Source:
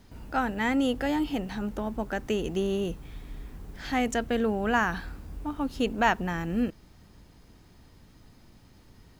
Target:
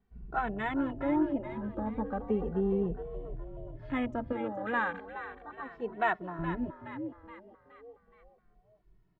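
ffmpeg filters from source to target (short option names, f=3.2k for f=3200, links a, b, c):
-filter_complex "[0:a]lowpass=2.2k,afwtdn=0.0224,asettb=1/sr,asplit=3[a][b][c];[a]atrim=end=4.324[d];[b]atrim=start=4.32:end=6.39,asetpts=PTS-STARTPTS,afade=t=in:d=0.004:c=qsin,afade=t=out:st=2.066:d=0.004:c=qsin,highpass=f=580:p=1[e];[c]atrim=start=6.386[f];[d][e]acrossfade=d=0.004:c1=hsin:c2=qsin[g];[g][f]acrossfade=d=0.004:c1=qsin:c2=hsin,asplit=6[h][i][j][k][l][m];[i]adelay=421,afreqshift=78,volume=-11dB[n];[j]adelay=842,afreqshift=156,volume=-17.6dB[o];[k]adelay=1263,afreqshift=234,volume=-24.1dB[p];[l]adelay=1684,afreqshift=312,volume=-30.7dB[q];[m]adelay=2105,afreqshift=390,volume=-37.2dB[r];[h][n][o][p][q][r]amix=inputs=6:normalize=0,asplit=2[s][t];[t]adelay=2.2,afreqshift=-0.36[u];[s][u]amix=inputs=2:normalize=1"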